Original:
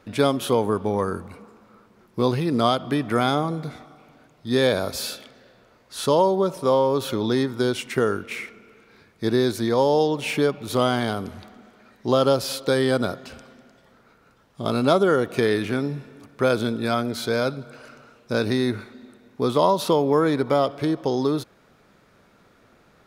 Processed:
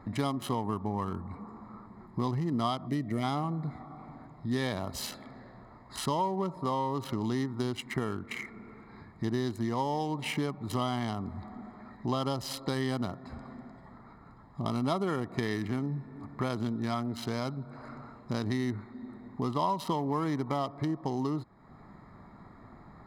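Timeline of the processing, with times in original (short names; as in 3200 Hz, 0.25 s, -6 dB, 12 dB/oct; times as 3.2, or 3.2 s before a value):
2.87–3.23 spectral gain 710–1800 Hz -14 dB
whole clip: Wiener smoothing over 15 samples; comb 1 ms, depth 67%; compressor 2:1, threshold -45 dBFS; gain +5 dB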